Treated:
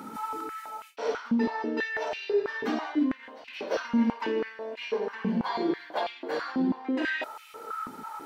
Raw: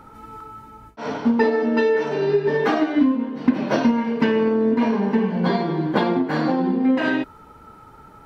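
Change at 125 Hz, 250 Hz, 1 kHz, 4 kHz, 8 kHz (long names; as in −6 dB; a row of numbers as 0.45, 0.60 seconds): −14.5 dB, −10.0 dB, −7.0 dB, −5.0 dB, can't be measured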